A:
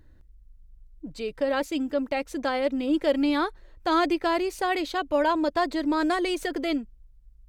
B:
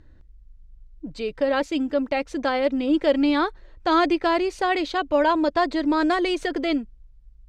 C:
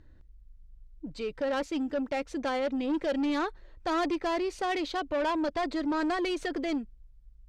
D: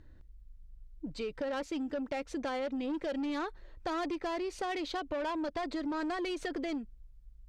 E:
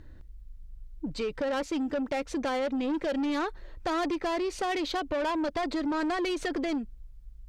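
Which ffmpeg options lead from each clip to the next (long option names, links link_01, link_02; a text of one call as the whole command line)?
ffmpeg -i in.wav -af "lowpass=5900,volume=3.5dB" out.wav
ffmpeg -i in.wav -af "asoftclip=type=tanh:threshold=-20dB,volume=-4.5dB" out.wav
ffmpeg -i in.wav -af "acompressor=threshold=-33dB:ratio=6" out.wav
ffmpeg -i in.wav -af "asoftclip=type=tanh:threshold=-30dB,volume=7dB" out.wav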